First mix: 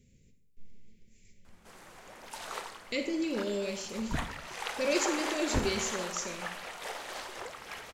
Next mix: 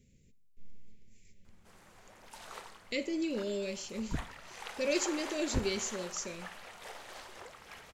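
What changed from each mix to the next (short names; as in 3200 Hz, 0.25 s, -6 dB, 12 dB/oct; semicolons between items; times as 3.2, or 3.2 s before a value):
speech: send -11.5 dB; background -7.5 dB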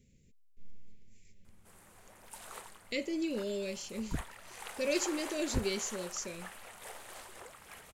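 background: add resonant high shelf 7100 Hz +8 dB, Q 1.5; reverb: off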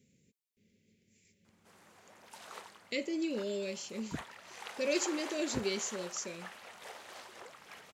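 background: add resonant high shelf 7100 Hz -8 dB, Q 1.5; master: add HPF 150 Hz 12 dB/oct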